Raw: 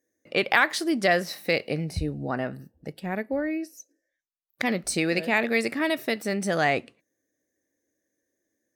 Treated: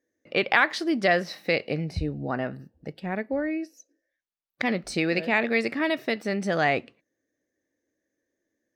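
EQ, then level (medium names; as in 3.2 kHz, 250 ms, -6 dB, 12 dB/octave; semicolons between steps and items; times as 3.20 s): FFT filter 2.7 kHz 0 dB, 5.2 kHz -3 dB, 9.4 kHz -14 dB; 0.0 dB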